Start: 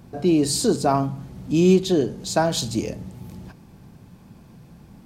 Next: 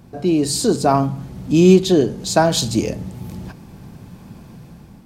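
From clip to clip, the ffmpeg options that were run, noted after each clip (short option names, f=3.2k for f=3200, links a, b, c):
-af "dynaudnorm=f=310:g=5:m=7dB,volume=1dB"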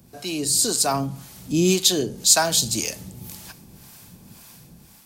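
-filter_complex "[0:a]acrossover=split=630[a][b];[a]aeval=exprs='val(0)*(1-0.7/2+0.7/2*cos(2*PI*1.9*n/s))':c=same[c];[b]aeval=exprs='val(0)*(1-0.7/2-0.7/2*cos(2*PI*1.9*n/s))':c=same[d];[c][d]amix=inputs=2:normalize=0,acrossover=split=110[e][f];[f]crystalizer=i=8.5:c=0[g];[e][g]amix=inputs=2:normalize=0,volume=-7dB"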